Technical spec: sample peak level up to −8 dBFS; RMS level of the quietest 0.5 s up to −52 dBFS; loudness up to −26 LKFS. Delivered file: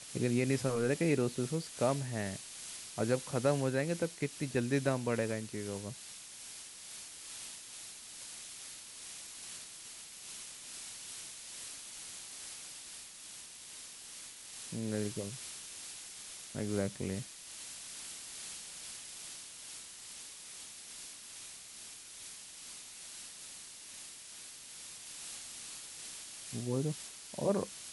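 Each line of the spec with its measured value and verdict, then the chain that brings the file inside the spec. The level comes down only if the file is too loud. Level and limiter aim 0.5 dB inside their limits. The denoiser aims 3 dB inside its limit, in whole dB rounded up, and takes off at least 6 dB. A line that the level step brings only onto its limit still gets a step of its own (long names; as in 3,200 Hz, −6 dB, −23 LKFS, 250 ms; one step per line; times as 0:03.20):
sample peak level −17.0 dBFS: in spec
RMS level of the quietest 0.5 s −50 dBFS: out of spec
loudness −39.0 LKFS: in spec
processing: broadband denoise 6 dB, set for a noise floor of −50 dBFS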